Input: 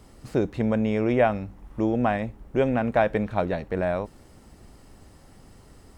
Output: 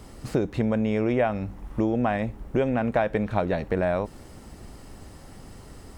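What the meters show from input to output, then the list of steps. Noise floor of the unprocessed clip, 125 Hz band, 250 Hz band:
-52 dBFS, +0.5 dB, 0.0 dB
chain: compressor 3:1, threshold -28 dBFS, peak gain reduction 10 dB; gain +6 dB

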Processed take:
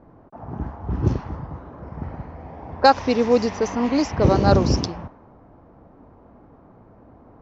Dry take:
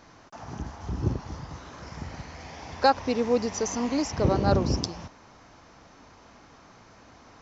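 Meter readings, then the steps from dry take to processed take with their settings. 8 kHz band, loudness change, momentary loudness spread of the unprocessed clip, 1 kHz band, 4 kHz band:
n/a, +7.0 dB, 18 LU, +6.5 dB, +5.0 dB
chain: low-pass opened by the level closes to 590 Hz, open at -18.5 dBFS; gain +6.5 dB

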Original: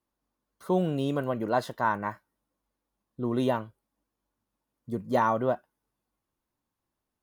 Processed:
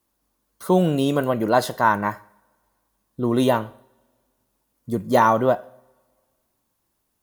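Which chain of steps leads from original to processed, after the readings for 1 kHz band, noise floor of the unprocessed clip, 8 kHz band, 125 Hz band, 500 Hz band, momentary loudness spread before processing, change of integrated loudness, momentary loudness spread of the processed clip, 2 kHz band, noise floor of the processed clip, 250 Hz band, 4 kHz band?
+8.5 dB, under -85 dBFS, n/a, +7.5 dB, +8.0 dB, 11 LU, +8.0 dB, 11 LU, +8.5 dB, -74 dBFS, +8.0 dB, +10.5 dB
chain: high shelf 5800 Hz +9.5 dB; two-slope reverb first 0.61 s, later 1.9 s, from -21 dB, DRR 16.5 dB; gain +8 dB

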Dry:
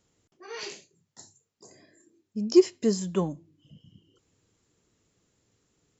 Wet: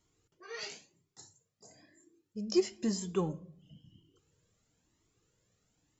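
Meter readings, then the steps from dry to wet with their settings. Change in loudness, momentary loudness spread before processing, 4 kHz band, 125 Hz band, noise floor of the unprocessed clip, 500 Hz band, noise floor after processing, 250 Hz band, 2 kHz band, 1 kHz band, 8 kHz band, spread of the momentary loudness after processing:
-9.0 dB, 19 LU, -4.0 dB, -5.5 dB, -80 dBFS, -9.5 dB, -82 dBFS, -8.5 dB, -3.0 dB, -4.5 dB, n/a, 17 LU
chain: shoebox room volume 1000 m³, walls furnished, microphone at 0.52 m; cascading flanger rising 1 Hz

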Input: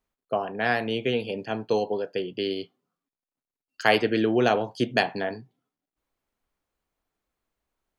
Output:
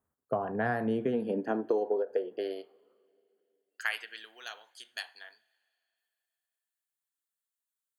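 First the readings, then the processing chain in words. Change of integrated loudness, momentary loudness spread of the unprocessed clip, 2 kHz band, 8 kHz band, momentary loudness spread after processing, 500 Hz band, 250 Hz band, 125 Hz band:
-7.0 dB, 10 LU, -9.0 dB, n/a, 15 LU, -6.5 dB, -7.0 dB, -8.0 dB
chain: band shelf 3600 Hz -16 dB; high-pass sweep 87 Hz -> 3500 Hz, 0.28–4.28; compressor 6:1, threshold -26 dBFS, peak gain reduction 11 dB; two-slope reverb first 0.51 s, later 3.1 s, from -15 dB, DRR 19 dB; ending taper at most 360 dB/s

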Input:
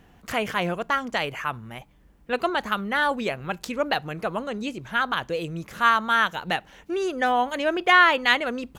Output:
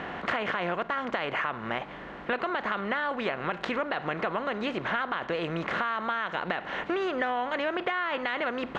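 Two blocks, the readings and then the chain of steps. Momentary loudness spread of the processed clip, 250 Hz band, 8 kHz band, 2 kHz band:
3 LU, -4.0 dB, under -15 dB, -7.0 dB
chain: per-bin compression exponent 0.6; LPF 2800 Hz 12 dB/oct; low shelf 140 Hz -8.5 dB; limiter -11.5 dBFS, peak gain reduction 8.5 dB; compressor 6:1, threshold -29 dBFS, peak gain reduction 11.5 dB; gain +2.5 dB

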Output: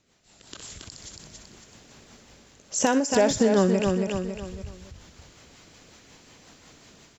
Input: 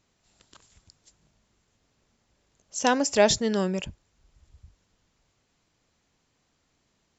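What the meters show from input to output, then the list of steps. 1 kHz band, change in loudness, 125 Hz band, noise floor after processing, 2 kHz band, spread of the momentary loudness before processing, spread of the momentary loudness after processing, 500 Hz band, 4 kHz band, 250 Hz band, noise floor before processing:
0.0 dB, +0.5 dB, +6.0 dB, -57 dBFS, -1.0 dB, 15 LU, 21 LU, +2.5 dB, -2.5 dB, +5.0 dB, -73 dBFS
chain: in parallel at -6 dB: sine folder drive 4 dB, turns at -6 dBFS; on the sum: limiter -12.5 dBFS, peak gain reduction 8.5 dB; rotary speaker horn 5.5 Hz; AGC gain up to 15 dB; dynamic EQ 3900 Hz, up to -8 dB, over -36 dBFS, Q 0.75; feedback echo 0.277 s, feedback 35%, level -7 dB; compressor 2.5:1, threshold -19 dBFS, peak gain reduction 8.5 dB; low shelf 130 Hz -7 dB; thin delay 62 ms, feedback 47%, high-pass 1600 Hz, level -10.5 dB; ending taper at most 130 dB/s

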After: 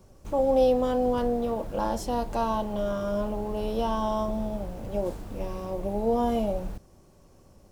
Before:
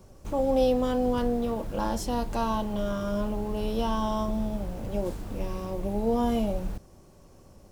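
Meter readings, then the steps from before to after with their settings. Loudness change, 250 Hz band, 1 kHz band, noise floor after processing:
+1.0 dB, -1.5 dB, +2.0 dB, -56 dBFS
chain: dynamic EQ 640 Hz, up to +6 dB, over -41 dBFS, Q 0.96; gain -2.5 dB

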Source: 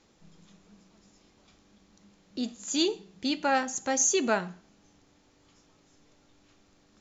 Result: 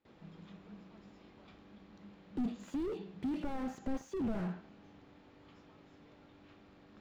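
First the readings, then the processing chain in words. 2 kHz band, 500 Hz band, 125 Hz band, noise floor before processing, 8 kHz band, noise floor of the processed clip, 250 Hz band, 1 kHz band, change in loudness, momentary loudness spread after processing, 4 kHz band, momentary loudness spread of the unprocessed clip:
-19.5 dB, -11.5 dB, +2.5 dB, -64 dBFS, n/a, -61 dBFS, -5.0 dB, -16.0 dB, -12.0 dB, 21 LU, -24.5 dB, 12 LU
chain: gate with hold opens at -55 dBFS; HPF 76 Hz 6 dB/oct; high shelf 5200 Hz +11.5 dB; compressor 6:1, threshold -26 dBFS, peak gain reduction 11.5 dB; soft clip -29.5 dBFS, distortion -10 dB; air absorption 460 m; slew limiter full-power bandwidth 3.3 Hz; gain +6 dB

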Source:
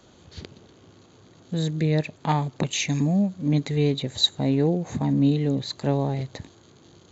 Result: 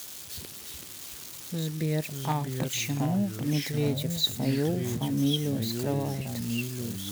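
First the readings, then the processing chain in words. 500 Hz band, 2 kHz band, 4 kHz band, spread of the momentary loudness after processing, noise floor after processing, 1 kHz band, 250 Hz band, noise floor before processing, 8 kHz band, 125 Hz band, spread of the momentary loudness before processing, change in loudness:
-5.0 dB, -2.5 dB, -3.5 dB, 12 LU, -43 dBFS, -5.0 dB, -5.0 dB, -54 dBFS, n/a, -4.5 dB, 11 LU, -5.5 dB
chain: switching spikes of -24.5 dBFS; echoes that change speed 0.295 s, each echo -3 st, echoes 2, each echo -6 dB; gain -6 dB

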